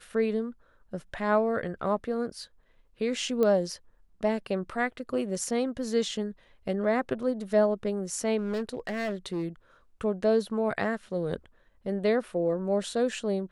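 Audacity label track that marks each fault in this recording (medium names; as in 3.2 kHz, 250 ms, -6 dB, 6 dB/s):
3.430000	3.430000	pop -16 dBFS
8.370000	9.450000	clipped -26.5 dBFS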